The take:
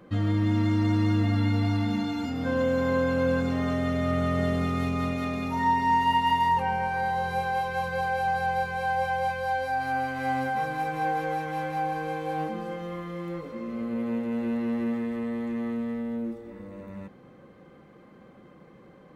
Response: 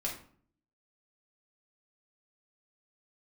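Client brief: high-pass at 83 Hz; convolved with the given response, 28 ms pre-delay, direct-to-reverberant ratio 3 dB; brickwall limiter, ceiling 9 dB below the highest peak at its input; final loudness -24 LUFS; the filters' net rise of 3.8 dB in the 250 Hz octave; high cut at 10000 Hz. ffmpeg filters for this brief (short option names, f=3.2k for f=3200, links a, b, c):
-filter_complex "[0:a]highpass=83,lowpass=10k,equalizer=f=250:t=o:g=4.5,alimiter=limit=-22dB:level=0:latency=1,asplit=2[a][b];[1:a]atrim=start_sample=2205,adelay=28[c];[b][c]afir=irnorm=-1:irlink=0,volume=-5.5dB[d];[a][d]amix=inputs=2:normalize=0,volume=4.5dB"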